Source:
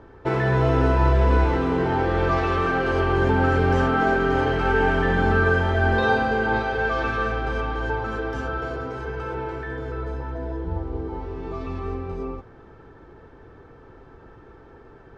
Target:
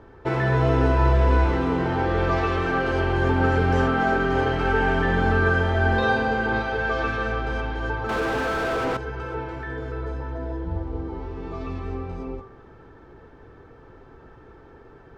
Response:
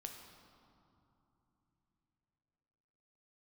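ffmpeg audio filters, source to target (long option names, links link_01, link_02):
-filter_complex "[0:a]bandreject=frequency=48.85:width_type=h:width=4,bandreject=frequency=97.7:width_type=h:width=4,bandreject=frequency=146.55:width_type=h:width=4,bandreject=frequency=195.4:width_type=h:width=4,bandreject=frequency=244.25:width_type=h:width=4,bandreject=frequency=293.1:width_type=h:width=4,bandreject=frequency=341.95:width_type=h:width=4,bandreject=frequency=390.8:width_type=h:width=4,bandreject=frequency=439.65:width_type=h:width=4,bandreject=frequency=488.5:width_type=h:width=4,bandreject=frequency=537.35:width_type=h:width=4,bandreject=frequency=586.2:width_type=h:width=4,bandreject=frequency=635.05:width_type=h:width=4,bandreject=frequency=683.9:width_type=h:width=4,bandreject=frequency=732.75:width_type=h:width=4,bandreject=frequency=781.6:width_type=h:width=4,bandreject=frequency=830.45:width_type=h:width=4,bandreject=frequency=879.3:width_type=h:width=4,bandreject=frequency=928.15:width_type=h:width=4,bandreject=frequency=977:width_type=h:width=4,bandreject=frequency=1025.85:width_type=h:width=4,bandreject=frequency=1074.7:width_type=h:width=4,bandreject=frequency=1123.55:width_type=h:width=4,bandreject=frequency=1172.4:width_type=h:width=4,bandreject=frequency=1221.25:width_type=h:width=4,bandreject=frequency=1270.1:width_type=h:width=4,bandreject=frequency=1318.95:width_type=h:width=4,bandreject=frequency=1367.8:width_type=h:width=4,bandreject=frequency=1416.65:width_type=h:width=4,bandreject=frequency=1465.5:width_type=h:width=4,bandreject=frequency=1514.35:width_type=h:width=4,bandreject=frequency=1563.2:width_type=h:width=4,bandreject=frequency=1612.05:width_type=h:width=4,bandreject=frequency=1660.9:width_type=h:width=4,bandreject=frequency=1709.75:width_type=h:width=4,asettb=1/sr,asplit=3[link_01][link_02][link_03];[link_01]atrim=end=8.094[link_04];[link_02]atrim=start=8.09:end=8.97,asetpts=PTS-STARTPTS,afade=type=in:duration=0.004:curve=qsin,afade=type=out:start_time=0.876:duration=0.004:curve=qsin,asplit=2[link_05][link_06];[link_06]highpass=frequency=720:poles=1,volume=39dB,asoftclip=type=tanh:threshold=-16.5dB[link_07];[link_05][link_07]amix=inputs=2:normalize=0,lowpass=frequency=1100:poles=1,volume=-6dB[link_08];[link_03]atrim=start=8.966[link_09];[link_04][link_08]acrossfade=duration=0.004:curve1=hsin:curve2=qsin[link_10];[link_10][link_09]acrossfade=duration=0.004:curve1=qsin:curve2=hsin"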